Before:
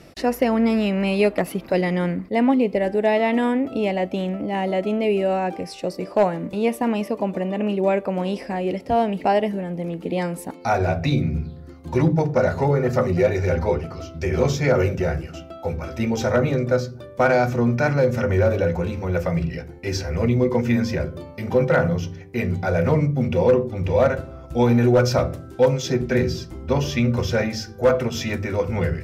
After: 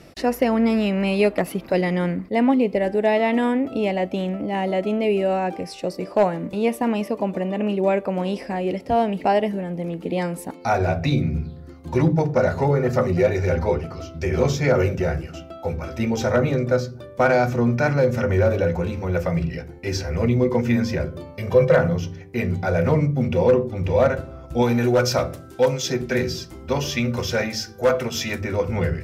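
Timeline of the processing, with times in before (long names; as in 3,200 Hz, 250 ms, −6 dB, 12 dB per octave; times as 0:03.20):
0:21.38–0:21.78: comb filter 1.8 ms
0:24.62–0:28.41: spectral tilt +1.5 dB per octave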